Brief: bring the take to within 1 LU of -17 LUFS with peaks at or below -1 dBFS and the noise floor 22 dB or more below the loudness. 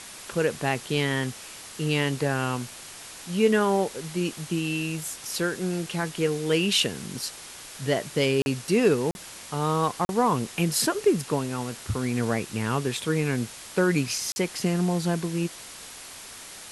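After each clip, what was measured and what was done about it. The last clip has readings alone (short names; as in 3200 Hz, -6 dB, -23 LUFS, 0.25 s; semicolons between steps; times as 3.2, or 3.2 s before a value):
dropouts 4; longest dropout 41 ms; noise floor -43 dBFS; noise floor target -49 dBFS; loudness -26.5 LUFS; peak -9.5 dBFS; loudness target -17.0 LUFS
-> interpolate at 8.42/9.11/10.05/14.32, 41 ms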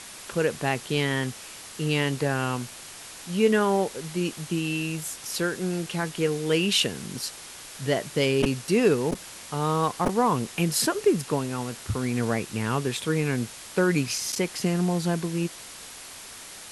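dropouts 0; noise floor -43 dBFS; noise floor target -49 dBFS
-> denoiser 6 dB, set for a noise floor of -43 dBFS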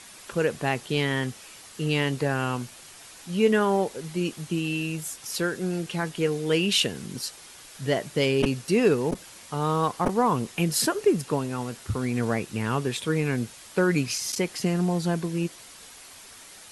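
noise floor -47 dBFS; noise floor target -49 dBFS
-> denoiser 6 dB, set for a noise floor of -47 dBFS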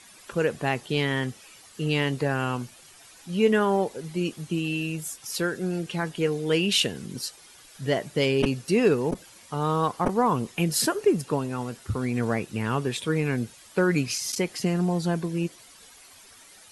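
noise floor -51 dBFS; loudness -26.5 LUFS; peak -9.0 dBFS; loudness target -17.0 LUFS
-> gain +9.5 dB; limiter -1 dBFS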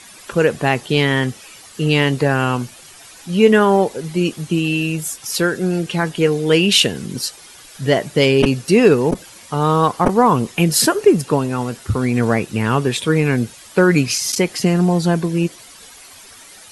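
loudness -17.0 LUFS; peak -1.0 dBFS; noise floor -42 dBFS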